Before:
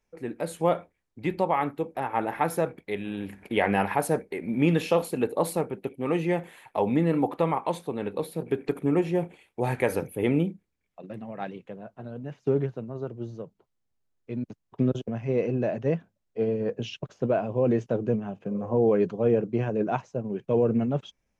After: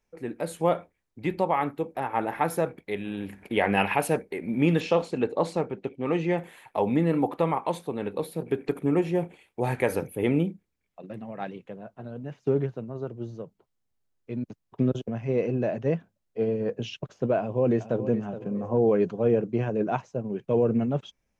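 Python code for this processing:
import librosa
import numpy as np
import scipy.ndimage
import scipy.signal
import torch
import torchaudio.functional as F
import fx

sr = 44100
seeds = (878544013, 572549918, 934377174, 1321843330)

y = fx.peak_eq(x, sr, hz=2700.0, db=12.5, octaves=0.53, at=(3.77, 4.17))
y = fx.lowpass(y, sr, hz=6900.0, slope=24, at=(4.8, 6.38))
y = fx.echo_throw(y, sr, start_s=17.38, length_s=0.66, ms=420, feedback_pct=35, wet_db=-12.0)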